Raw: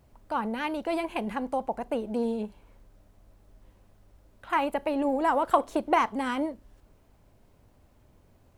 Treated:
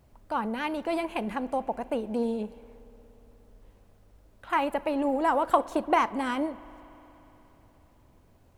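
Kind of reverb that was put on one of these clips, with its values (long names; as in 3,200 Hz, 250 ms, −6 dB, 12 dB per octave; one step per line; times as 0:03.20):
spring reverb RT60 3.8 s, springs 59 ms, chirp 60 ms, DRR 18.5 dB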